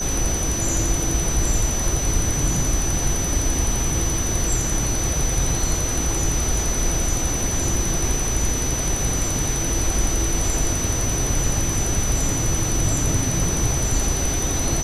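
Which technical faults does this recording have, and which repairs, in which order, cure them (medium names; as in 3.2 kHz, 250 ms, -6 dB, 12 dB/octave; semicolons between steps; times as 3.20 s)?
whine 6 kHz -25 dBFS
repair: band-stop 6 kHz, Q 30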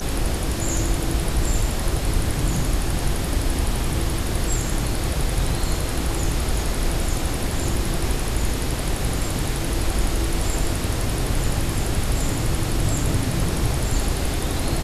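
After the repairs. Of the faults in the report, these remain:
nothing left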